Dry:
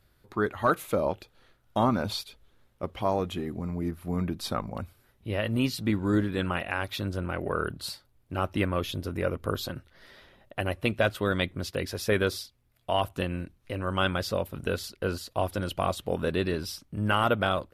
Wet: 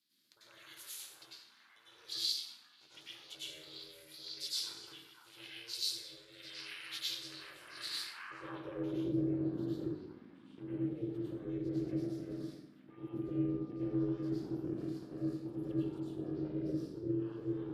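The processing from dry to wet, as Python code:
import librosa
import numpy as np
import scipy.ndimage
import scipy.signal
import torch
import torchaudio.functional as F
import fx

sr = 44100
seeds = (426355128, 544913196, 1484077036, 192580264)

y = fx.high_shelf(x, sr, hz=11000.0, db=11.5)
y = fx.over_compress(y, sr, threshold_db=-32.0, ratio=-1.0)
y = fx.tone_stack(y, sr, knobs='6-0-2')
y = fx.echo_stepped(y, sr, ms=505, hz=980.0, octaves=0.7, feedback_pct=70, wet_db=-2.5)
y = fx.rev_plate(y, sr, seeds[0], rt60_s=0.88, hf_ratio=0.7, predelay_ms=85, drr_db=-9.0)
y = y * np.sin(2.0 * np.pi * 230.0 * np.arange(len(y)) / sr)
y = fx.filter_sweep_bandpass(y, sr, from_hz=4500.0, to_hz=280.0, start_s=7.72, end_s=9.1, q=1.5)
y = fx.dmg_tone(y, sr, hz=1200.0, level_db=-72.0, at=(12.9, 14.29), fade=0.02)
y = F.gain(torch.from_numpy(y), 8.5).numpy()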